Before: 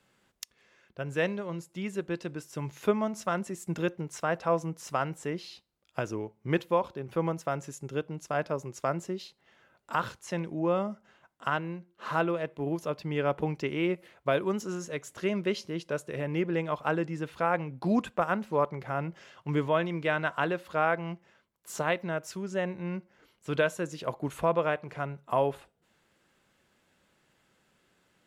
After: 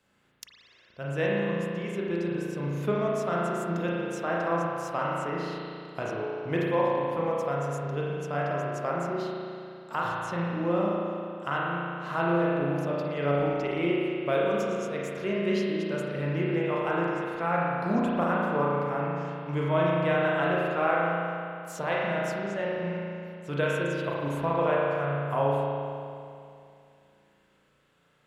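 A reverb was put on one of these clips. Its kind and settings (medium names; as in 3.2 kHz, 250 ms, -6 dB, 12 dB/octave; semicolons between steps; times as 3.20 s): spring tank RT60 2.5 s, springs 35 ms, chirp 25 ms, DRR -5 dB; trim -3.5 dB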